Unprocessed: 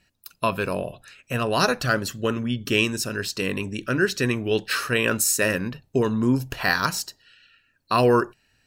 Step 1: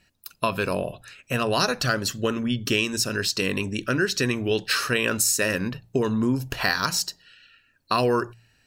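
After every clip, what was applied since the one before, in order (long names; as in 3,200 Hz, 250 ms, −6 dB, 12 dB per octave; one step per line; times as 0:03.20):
hum removal 57.99 Hz, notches 3
dynamic equaliser 5,100 Hz, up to +5 dB, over −41 dBFS, Q 1
downward compressor 3 to 1, threshold −22 dBFS, peak gain reduction 6.5 dB
level +2 dB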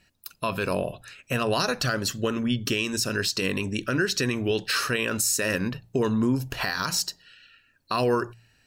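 brickwall limiter −14.5 dBFS, peak gain reduction 8.5 dB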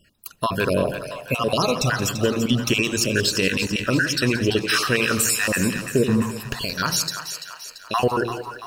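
time-frequency cells dropped at random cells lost 32%
echo with a time of its own for lows and highs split 580 Hz, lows 84 ms, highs 339 ms, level −9.5 dB
feedback echo at a low word length 175 ms, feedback 35%, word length 9 bits, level −14 dB
level +6 dB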